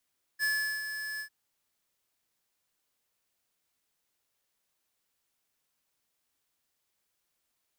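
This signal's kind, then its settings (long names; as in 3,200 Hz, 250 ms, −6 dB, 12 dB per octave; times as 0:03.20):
note with an ADSR envelope square 1,720 Hz, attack 44 ms, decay 383 ms, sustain −9 dB, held 0.81 s, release 88 ms −28 dBFS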